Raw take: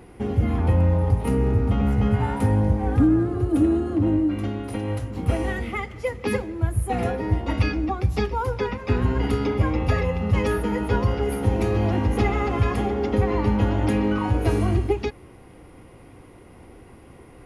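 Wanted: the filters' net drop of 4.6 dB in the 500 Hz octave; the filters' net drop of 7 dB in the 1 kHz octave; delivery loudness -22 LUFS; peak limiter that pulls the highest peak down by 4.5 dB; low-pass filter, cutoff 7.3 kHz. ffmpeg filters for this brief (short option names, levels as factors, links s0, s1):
-af "lowpass=7300,equalizer=f=500:t=o:g=-4.5,equalizer=f=1000:t=o:g=-7.5,volume=1.5,alimiter=limit=0.282:level=0:latency=1"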